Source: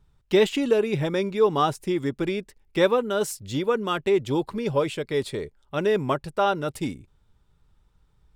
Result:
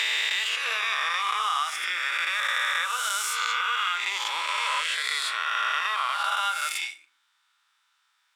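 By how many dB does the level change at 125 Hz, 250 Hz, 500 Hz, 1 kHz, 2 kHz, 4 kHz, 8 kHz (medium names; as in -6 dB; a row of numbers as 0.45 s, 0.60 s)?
under -40 dB, under -35 dB, -25.0 dB, +2.0 dB, +9.5 dB, +8.5 dB, +7.5 dB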